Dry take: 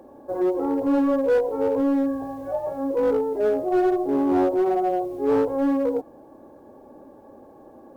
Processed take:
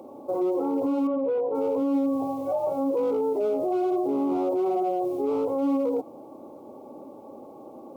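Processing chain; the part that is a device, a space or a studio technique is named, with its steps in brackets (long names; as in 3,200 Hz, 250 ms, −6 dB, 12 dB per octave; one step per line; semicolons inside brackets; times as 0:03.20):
PA system with an anti-feedback notch (high-pass filter 140 Hz 12 dB per octave; Butterworth band-reject 1,700 Hz, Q 2.1; brickwall limiter −22.5 dBFS, peak gain reduction 10.5 dB)
0:01.07–0:01.55: high-frequency loss of the air 440 metres
level +3.5 dB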